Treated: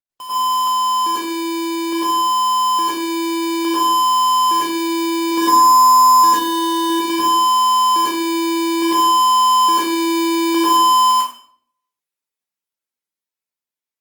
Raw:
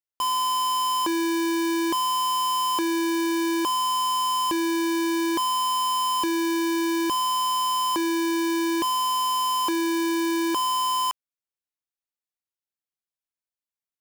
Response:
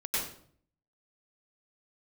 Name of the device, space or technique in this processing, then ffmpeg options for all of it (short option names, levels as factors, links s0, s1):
far-field microphone of a smart speaker: -filter_complex "[0:a]asettb=1/sr,asplit=3[s0][s1][s2];[s0]atrim=end=5.314[s3];[s1]atrim=start=5.31:end=6.9,asetpts=PTS-STARTPTS,afade=t=in:d=0.004:c=qsin,afade=t=out:st=1.586:d=0.004:c=qsin,aecho=1:1:4.1:0.97,atrim=end_sample=70119[s4];[s2]atrim=start=6.896[s5];[s3][s4]acrossfade=d=0.004:c1=hsin:c2=qsin[s6];[s6][s5]acrossfade=d=0.004:c1=qsin:c2=hsin[s7];[1:a]atrim=start_sample=2205[s8];[s7][s8]afir=irnorm=-1:irlink=0,highpass=140,dynaudnorm=f=910:g=7:m=3.76,volume=0.708" -ar 48000 -c:a libopus -b:a 24k